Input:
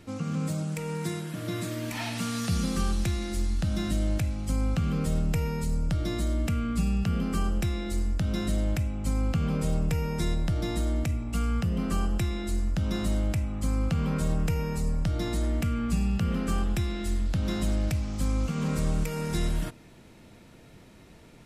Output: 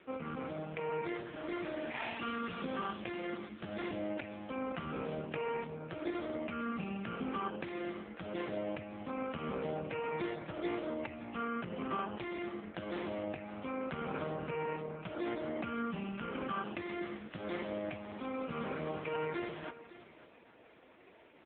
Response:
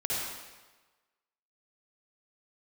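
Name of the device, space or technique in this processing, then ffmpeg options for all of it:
satellite phone: -filter_complex "[0:a]asplit=3[a][b][c];[a]afade=t=out:st=7.86:d=0.02[d];[b]equalizer=f=8.9k:w=7.3:g=-2.5,afade=t=in:st=7.86:d=0.02,afade=t=out:st=9.02:d=0.02[e];[c]afade=t=in:st=9.02:d=0.02[f];[d][e][f]amix=inputs=3:normalize=0,highpass=400,lowpass=3.3k,aecho=1:1:548:0.158,volume=2dB" -ar 8000 -c:a libopencore_amrnb -b:a 4750

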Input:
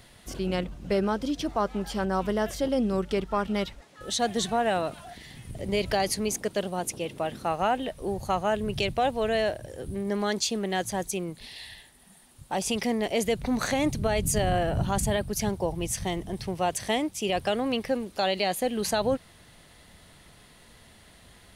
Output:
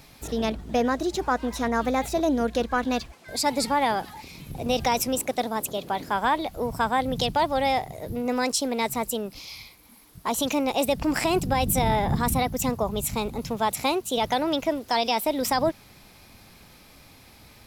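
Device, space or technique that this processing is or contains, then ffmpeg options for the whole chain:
nightcore: -af "asetrate=53802,aresample=44100,volume=2.5dB"

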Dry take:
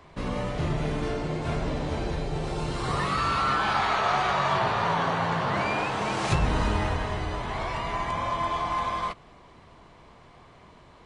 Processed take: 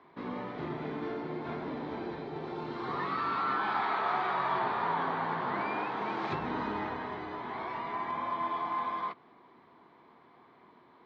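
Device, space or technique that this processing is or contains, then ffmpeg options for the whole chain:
kitchen radio: -af "highpass=230,equalizer=f=250:t=q:w=4:g=5,equalizer=f=360:t=q:w=4:g=4,equalizer=f=580:t=q:w=4:g=-6,equalizer=f=930:t=q:w=4:g=3,equalizer=f=2.8k:t=q:w=4:g=-9,lowpass=f=3.6k:w=0.5412,lowpass=f=3.6k:w=1.3066,volume=-6dB"

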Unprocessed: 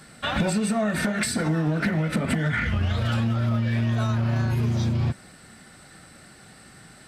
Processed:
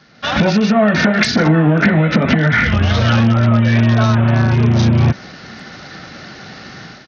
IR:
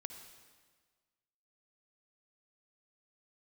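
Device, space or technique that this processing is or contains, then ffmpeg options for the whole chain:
Bluetooth headset: -af "highpass=f=110:p=1,dynaudnorm=f=110:g=5:m=16dB,aresample=16000,aresample=44100" -ar 48000 -c:a sbc -b:a 64k

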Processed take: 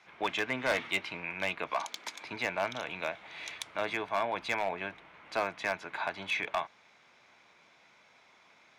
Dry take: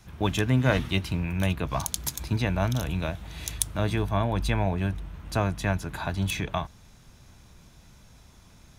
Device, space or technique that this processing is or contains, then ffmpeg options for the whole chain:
megaphone: -filter_complex "[0:a]highpass=560,lowpass=3.3k,equalizer=f=2.2k:t=o:w=0.22:g=9.5,asoftclip=type=hard:threshold=-22.5dB,asettb=1/sr,asplit=3[a][b][c];[a]atrim=end=1.714[d];[b]atrim=start=1.71:end=2.25,asetpts=PTS-STARTPTS,afade=t=in:d=0.004:c=qsin,afade=t=out:st=0.536:d=0.004:c=qsin,highpass=f=190:w=0.5412,highpass=f=190:w=1.3066[e];[c]atrim=start=2.246[f];[d][e]acrossfade=d=0.004:c1=hsin:c2=qsin[g];[g][f]acrossfade=d=0.004:c1=qsin:c2=hsin"

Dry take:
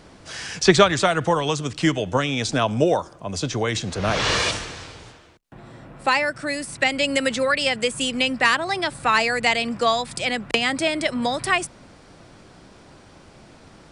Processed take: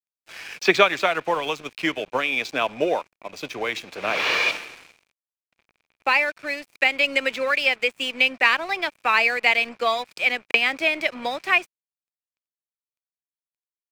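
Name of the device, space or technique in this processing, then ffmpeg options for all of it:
pocket radio on a weak battery: -af "highpass=350,lowpass=4.3k,aeval=exprs='sgn(val(0))*max(abs(val(0))-0.0106,0)':c=same,equalizer=f=2.4k:t=o:w=0.29:g=11.5,volume=-1.5dB"

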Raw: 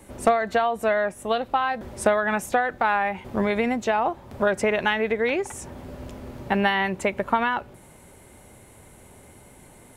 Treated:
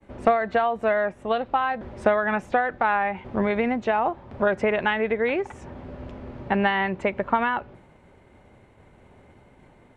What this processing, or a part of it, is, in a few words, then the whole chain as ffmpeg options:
hearing-loss simulation: -af "lowpass=2.8k,agate=range=-33dB:threshold=-46dB:ratio=3:detection=peak"

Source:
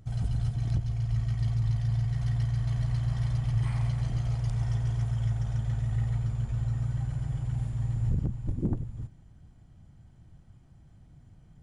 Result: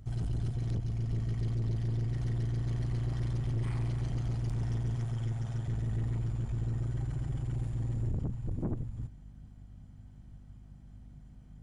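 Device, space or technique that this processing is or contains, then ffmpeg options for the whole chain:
valve amplifier with mains hum: -filter_complex "[0:a]asettb=1/sr,asplit=3[a][b][c];[a]atrim=end=4.964[d];[b]atrim=start=4.96:end=5.68,asetpts=PTS-STARTPTS,afade=t=in:d=0.004:c=qsin,afade=t=out:st=0.716:d=0.004:c=qsin,highpass=100[e];[c]atrim=start=5.676[f];[d][e]acrossfade=d=0.004:c1=hsin:c2=qsin[g];[g][f]acrossfade=d=0.004:c1=qsin:c2=hsin,aeval=exprs='(tanh(25.1*val(0)+0.35)-tanh(0.35))/25.1':c=same,aeval=exprs='val(0)+0.00282*(sin(2*PI*50*n/s)+sin(2*PI*2*50*n/s)/2+sin(2*PI*3*50*n/s)/3+sin(2*PI*4*50*n/s)/4+sin(2*PI*5*50*n/s)/5)':c=same"

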